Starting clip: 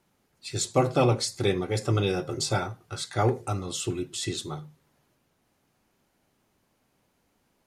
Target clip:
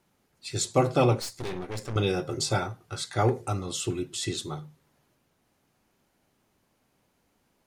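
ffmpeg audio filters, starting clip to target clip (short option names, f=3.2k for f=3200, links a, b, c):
-filter_complex "[0:a]asettb=1/sr,asplit=3[a][b][c];[a]atrim=end=1.204[d];[b]atrim=start=1.2:end=1.96,asetpts=PTS-STARTPTS,afade=t=in:d=0.004:c=qsin,afade=t=out:st=0.756:d=0.004:c=qsin,aeval=exprs='(tanh(35.5*val(0)+0.8)-tanh(0.8))/35.5':c=same[e];[c]atrim=start=1.956[f];[d][e]acrossfade=d=0.004:c1=hsin:c2=qsin[g];[g][f]acrossfade=d=0.004:c1=qsin:c2=hsin"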